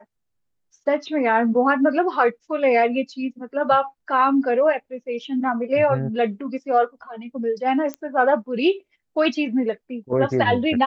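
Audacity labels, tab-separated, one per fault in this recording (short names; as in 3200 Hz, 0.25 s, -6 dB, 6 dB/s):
7.940000	7.940000	pop -16 dBFS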